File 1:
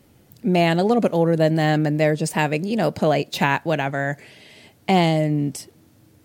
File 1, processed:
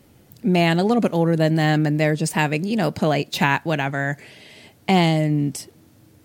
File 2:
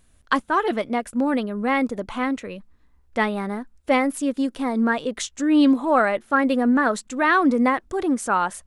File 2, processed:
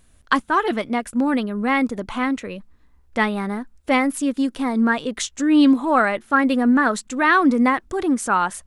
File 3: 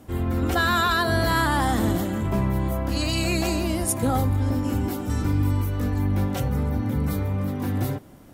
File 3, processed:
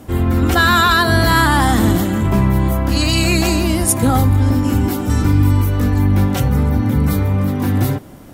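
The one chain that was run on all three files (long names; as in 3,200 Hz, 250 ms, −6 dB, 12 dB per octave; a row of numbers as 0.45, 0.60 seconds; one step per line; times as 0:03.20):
dynamic equaliser 560 Hz, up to −5 dB, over −35 dBFS, Q 1.5
normalise the peak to −2 dBFS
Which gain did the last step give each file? +1.5, +3.0, +9.5 decibels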